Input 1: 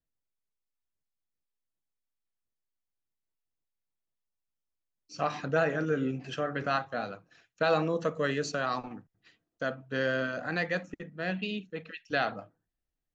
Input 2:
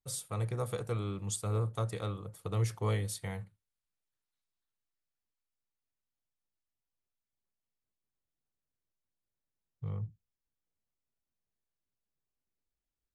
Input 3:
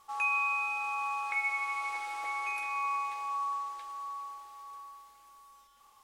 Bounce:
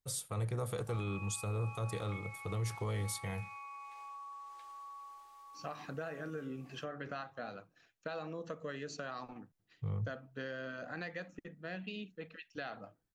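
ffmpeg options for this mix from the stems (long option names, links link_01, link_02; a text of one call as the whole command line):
ffmpeg -i stem1.wav -i stem2.wav -i stem3.wav -filter_complex "[0:a]acompressor=threshold=-31dB:ratio=10,adelay=450,volume=-7dB[link_01];[1:a]volume=0.5dB[link_02];[2:a]acompressor=threshold=-39dB:ratio=6,adelay=800,volume=-7.5dB[link_03];[link_01][link_02][link_03]amix=inputs=3:normalize=0,alimiter=level_in=4.5dB:limit=-24dB:level=0:latency=1:release=36,volume=-4.5dB" out.wav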